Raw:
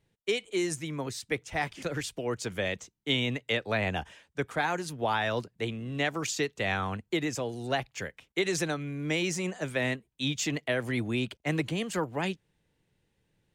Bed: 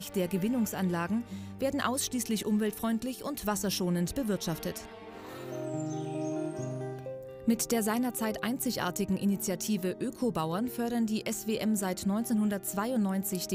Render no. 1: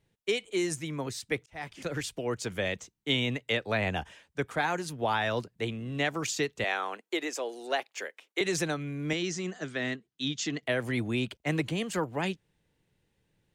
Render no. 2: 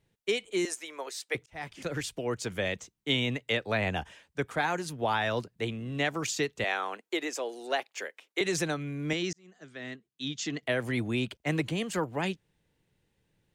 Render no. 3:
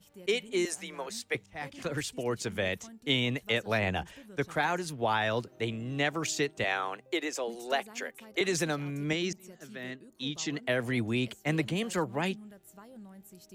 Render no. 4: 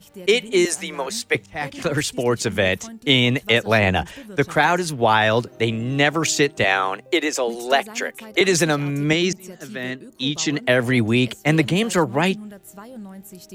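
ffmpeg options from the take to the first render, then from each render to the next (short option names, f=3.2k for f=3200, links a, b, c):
-filter_complex "[0:a]asettb=1/sr,asplit=3[a][b][c];[a]atrim=end=6.644[d];[b]atrim=start=6.64:end=8.41,asetpts=PTS-STARTPTS,afade=t=in:d=0.004:c=qsin,afade=t=out:st=1.766:d=0.004:c=qsin,highpass=f=340:w=0.5412,highpass=f=340:w=1.3066[e];[c]atrim=start=8.406[f];[d][e]acrossfade=d=0.004:c1=hsin:c2=qsin[g];[g][f]acrossfade=d=0.004:c1=qsin:c2=hsin,asettb=1/sr,asplit=3[h][i][j];[h]atrim=end=9.134[k];[i]atrim=start=9.13:end=10.63,asetpts=PTS-STARTPTS,afade=t=in:d=0.004:c=qsin,afade=t=out:st=1.496:d=0.004:c=qsin,highpass=170,equalizer=f=560:t=q:w=4:g=-9,equalizer=f=910:t=q:w=4:g=-9,equalizer=f=2.4k:t=q:w=4:g=-7,lowpass=f=6.8k:w=0.5412,lowpass=f=6.8k:w=1.3066[l];[j]atrim=start=10.626[m];[k][l]acrossfade=d=0.004:c1=hsin:c2=qsin[n];[n][m]acrossfade=d=0.004:c1=qsin:c2=hsin,asplit=2[o][p];[o]atrim=end=1.46,asetpts=PTS-STARTPTS,afade=t=out:st=1.456:d=0.004:c=hsin[q];[p]atrim=start=1.46,asetpts=PTS-STARTPTS,afade=t=in:d=0.62:c=qsin[r];[q][r]concat=n=2:v=0:a=1"
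-filter_complex "[0:a]asettb=1/sr,asplit=3[a][b][c];[a]atrim=end=0.654[d];[b]atrim=start=0.65:end=1.35,asetpts=PTS-STARTPTS,afade=t=in:d=0.004:c=qsin,afade=t=out:st=0.696:d=0.004:c=qsin,highpass=f=440:w=0.5412,highpass=f=440:w=1.3066[e];[c]atrim=start=1.346[f];[d][e]acrossfade=d=0.004:c1=hsin:c2=qsin[g];[g][f]acrossfade=d=0.004:c1=qsin:c2=hsin,asplit=2[h][i];[h]atrim=end=9.33,asetpts=PTS-STARTPTS,afade=t=out:st=9.326:d=0.004:c=hsin[j];[i]atrim=start=9.33,asetpts=PTS-STARTPTS,afade=t=in:d=1.35[k];[j][k]concat=n=2:v=0:a=1"
-filter_complex "[1:a]volume=-20dB[a];[0:a][a]amix=inputs=2:normalize=0"
-af "volume=12dB,alimiter=limit=-3dB:level=0:latency=1"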